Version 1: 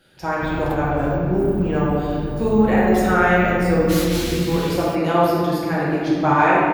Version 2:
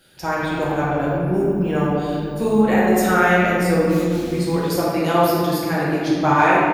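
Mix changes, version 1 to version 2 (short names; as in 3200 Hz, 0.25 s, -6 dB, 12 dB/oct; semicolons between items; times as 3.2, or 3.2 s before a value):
speech: add high shelf 4600 Hz +10 dB; background -11.5 dB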